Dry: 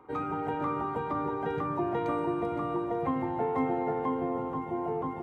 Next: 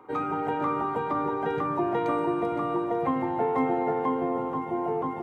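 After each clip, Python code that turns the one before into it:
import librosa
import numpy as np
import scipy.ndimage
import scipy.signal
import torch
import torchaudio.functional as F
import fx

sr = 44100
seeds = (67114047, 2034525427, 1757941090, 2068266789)

y = fx.highpass(x, sr, hz=180.0, slope=6)
y = y * 10.0 ** (4.5 / 20.0)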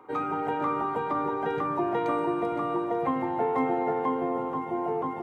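y = fx.low_shelf(x, sr, hz=220.0, db=-4.0)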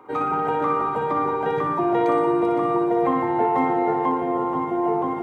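y = fx.room_flutter(x, sr, wall_m=10.3, rt60_s=0.62)
y = y * 10.0 ** (4.0 / 20.0)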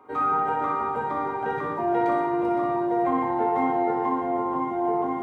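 y = fx.rev_fdn(x, sr, rt60_s=0.79, lf_ratio=0.8, hf_ratio=0.9, size_ms=75.0, drr_db=0.5)
y = y * 10.0 ** (-6.5 / 20.0)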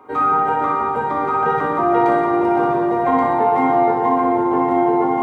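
y = x + 10.0 ** (-4.5 / 20.0) * np.pad(x, (int(1128 * sr / 1000.0), 0))[:len(x)]
y = y * 10.0 ** (7.0 / 20.0)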